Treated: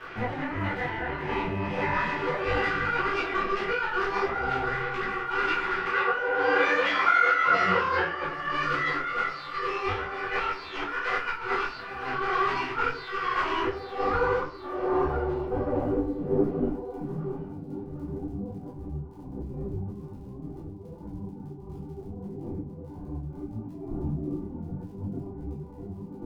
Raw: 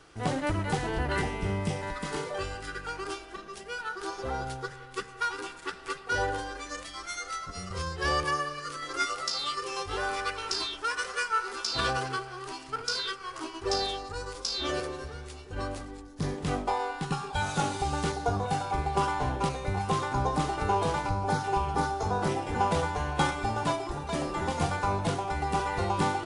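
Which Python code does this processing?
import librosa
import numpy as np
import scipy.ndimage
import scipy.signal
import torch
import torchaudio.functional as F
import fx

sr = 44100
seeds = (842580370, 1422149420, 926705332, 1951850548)

y = scipy.ndimage.median_filter(x, 5, mode='constant')
y = fx.tilt_eq(y, sr, slope=2.0)
y = fx.over_compress(y, sr, threshold_db=-40.0, ratio=-1.0)
y = fx.filter_sweep_lowpass(y, sr, from_hz=2100.0, to_hz=240.0, start_s=13.58, end_s=17.45, q=1.5)
y = fx.dmg_crackle(y, sr, seeds[0], per_s=32.0, level_db=-53.0)
y = fx.tube_stage(y, sr, drive_db=25.0, bias=0.35)
y = fx.cabinet(y, sr, low_hz=140.0, low_slope=12, high_hz=8200.0, hz=(170.0, 520.0, 930.0, 1500.0, 2800.0), db=(-4, 9, 7, 9, 5), at=(5.91, 8.23))
y = fx.echo_feedback(y, sr, ms=768, feedback_pct=59, wet_db=-20)
y = fx.room_shoebox(y, sr, seeds[1], volume_m3=32.0, walls='mixed', distance_m=0.93)
y = fx.detune_double(y, sr, cents=55)
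y = y * librosa.db_to_amplitude(6.5)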